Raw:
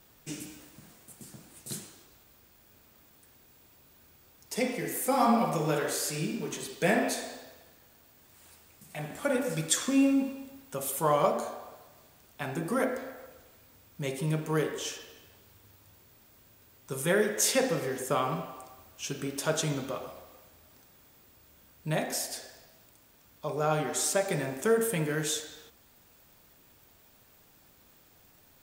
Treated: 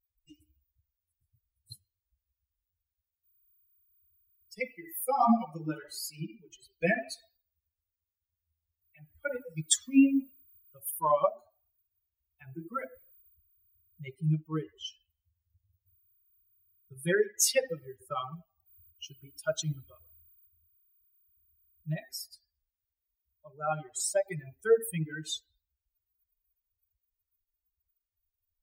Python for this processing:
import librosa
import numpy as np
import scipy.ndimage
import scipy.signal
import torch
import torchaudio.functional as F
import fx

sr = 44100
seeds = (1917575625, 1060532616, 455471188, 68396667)

y = fx.bin_expand(x, sr, power=3.0)
y = y * 10.0 ** (5.0 / 20.0)